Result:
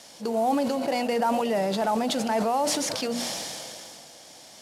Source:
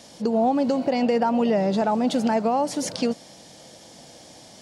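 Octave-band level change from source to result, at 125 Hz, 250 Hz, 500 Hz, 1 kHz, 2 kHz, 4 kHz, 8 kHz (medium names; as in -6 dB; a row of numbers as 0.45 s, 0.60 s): -5.5 dB, -6.0 dB, -3.0 dB, -1.0 dB, +1.0 dB, +4.0 dB, +5.0 dB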